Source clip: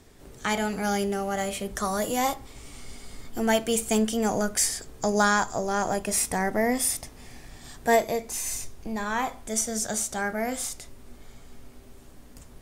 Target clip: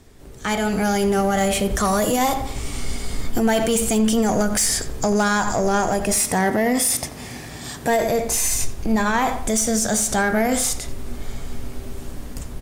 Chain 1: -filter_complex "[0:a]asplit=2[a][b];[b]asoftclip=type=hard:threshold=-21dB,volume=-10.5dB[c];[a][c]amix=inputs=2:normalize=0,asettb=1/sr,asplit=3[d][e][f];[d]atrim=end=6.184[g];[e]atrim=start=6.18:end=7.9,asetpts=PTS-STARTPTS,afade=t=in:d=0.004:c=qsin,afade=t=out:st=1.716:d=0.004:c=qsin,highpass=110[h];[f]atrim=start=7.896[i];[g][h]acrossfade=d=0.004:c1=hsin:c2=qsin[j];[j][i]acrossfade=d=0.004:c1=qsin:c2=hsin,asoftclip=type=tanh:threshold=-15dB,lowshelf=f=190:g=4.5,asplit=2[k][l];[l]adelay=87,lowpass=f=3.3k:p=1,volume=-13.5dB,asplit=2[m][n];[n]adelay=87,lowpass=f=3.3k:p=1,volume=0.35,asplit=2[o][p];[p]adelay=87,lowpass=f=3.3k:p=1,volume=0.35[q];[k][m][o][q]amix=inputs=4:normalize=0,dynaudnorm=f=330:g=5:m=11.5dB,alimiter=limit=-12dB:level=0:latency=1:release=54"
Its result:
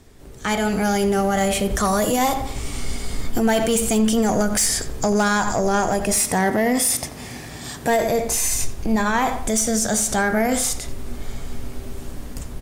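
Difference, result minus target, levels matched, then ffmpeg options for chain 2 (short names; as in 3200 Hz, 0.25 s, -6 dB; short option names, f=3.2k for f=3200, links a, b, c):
hard clip: distortion -7 dB
-filter_complex "[0:a]asplit=2[a][b];[b]asoftclip=type=hard:threshold=-29.5dB,volume=-10.5dB[c];[a][c]amix=inputs=2:normalize=0,asettb=1/sr,asplit=3[d][e][f];[d]atrim=end=6.184[g];[e]atrim=start=6.18:end=7.9,asetpts=PTS-STARTPTS,afade=t=in:d=0.004:c=qsin,afade=t=out:st=1.716:d=0.004:c=qsin,highpass=110[h];[f]atrim=start=7.896[i];[g][h]acrossfade=d=0.004:c1=hsin:c2=qsin[j];[j][i]acrossfade=d=0.004:c1=qsin:c2=hsin,asoftclip=type=tanh:threshold=-15dB,lowshelf=f=190:g=4.5,asplit=2[k][l];[l]adelay=87,lowpass=f=3.3k:p=1,volume=-13.5dB,asplit=2[m][n];[n]adelay=87,lowpass=f=3.3k:p=1,volume=0.35,asplit=2[o][p];[p]adelay=87,lowpass=f=3.3k:p=1,volume=0.35[q];[k][m][o][q]amix=inputs=4:normalize=0,dynaudnorm=f=330:g=5:m=11.5dB,alimiter=limit=-12dB:level=0:latency=1:release=54"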